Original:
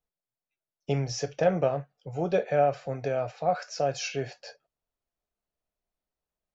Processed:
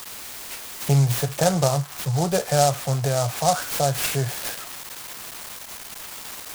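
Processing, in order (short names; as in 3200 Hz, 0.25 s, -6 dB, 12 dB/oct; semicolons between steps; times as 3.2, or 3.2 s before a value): switching spikes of -27.5 dBFS; tilt -1.5 dB/oct; in parallel at 0 dB: compressor, threshold -32 dBFS, peak gain reduction 15 dB; on the sum: ten-band EQ 125 Hz +8 dB, 250 Hz -5 dB, 500 Hz -4 dB, 1000 Hz +10 dB, 2000 Hz +3 dB, 4000 Hz +8 dB; noise-modulated delay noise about 5900 Hz, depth 0.082 ms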